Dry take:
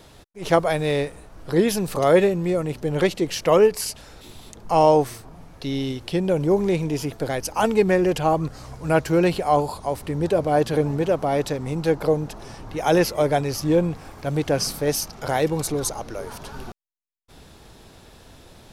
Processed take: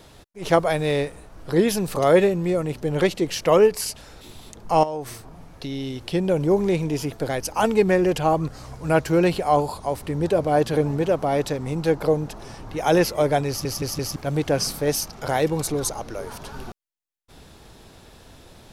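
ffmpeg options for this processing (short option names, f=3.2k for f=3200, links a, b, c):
-filter_complex "[0:a]asettb=1/sr,asplit=3[a][b][c];[a]atrim=end=4.834[d];[b]atrim=start=4.83:end=6.05,asetpts=PTS-STARTPTS,afade=t=in:d=0.004:c=qsin,afade=t=out:st=1.216:d=0.004:c=qsin,acompressor=threshold=-26dB:ratio=6:attack=3.2:release=140:knee=1:detection=peak[e];[c]atrim=start=6.046[f];[d][e]acrossfade=d=0.004:c1=hsin:c2=qsin[g];[g][f]acrossfade=d=0.004:c1=qsin:c2=hsin,asplit=5[h][i][j][k][l];[h]atrim=end=13.652[m];[i]atrim=start=13.478:end=13.652[n];[j]atrim=start=13.478:end=13.652[o];[k]atrim=start=13.478:end=13.652[p];[l]atrim=start=14.158[q];[m][n]acrossfade=d=0.004:c1=hsin:c2=hsin[r];[r][o]acrossfade=d=0.004:c1=hsin:c2=hsin[s];[s][p]acrossfade=d=0.004:c1=hsin:c2=hsin[t];[t][q]acrossfade=d=0.004:c1=hsin:c2=hsin"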